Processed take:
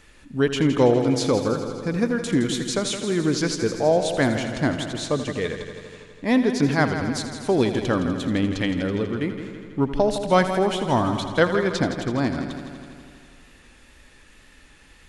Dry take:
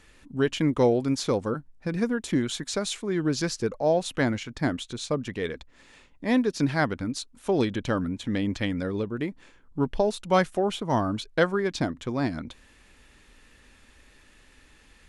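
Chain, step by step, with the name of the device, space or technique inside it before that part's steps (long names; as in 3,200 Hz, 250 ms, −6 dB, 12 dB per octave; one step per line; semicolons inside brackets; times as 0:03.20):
multi-head tape echo (echo machine with several playback heads 82 ms, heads first and second, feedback 68%, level −12.5 dB; tape wow and flutter 22 cents)
level +3.5 dB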